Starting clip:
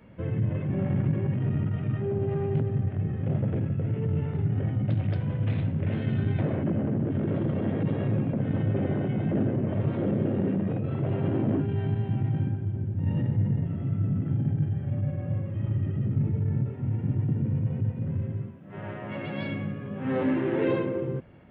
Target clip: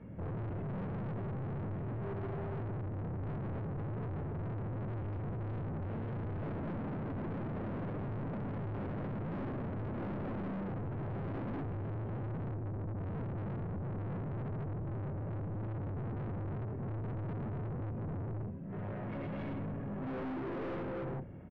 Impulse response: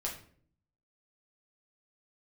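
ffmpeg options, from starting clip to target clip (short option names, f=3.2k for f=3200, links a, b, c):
-filter_complex "[0:a]lowshelf=f=460:g=8.5,asplit=2[a][b];[b]aecho=0:1:11|36:0.158|0.211[c];[a][c]amix=inputs=2:normalize=0,aeval=exprs='(tanh(56.2*val(0)+0.2)-tanh(0.2))/56.2':c=same,lowpass=2k,volume=-2.5dB"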